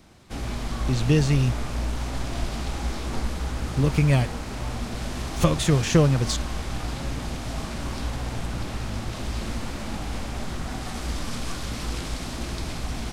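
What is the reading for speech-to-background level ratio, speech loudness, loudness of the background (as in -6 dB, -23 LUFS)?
8.5 dB, -23.0 LUFS, -31.5 LUFS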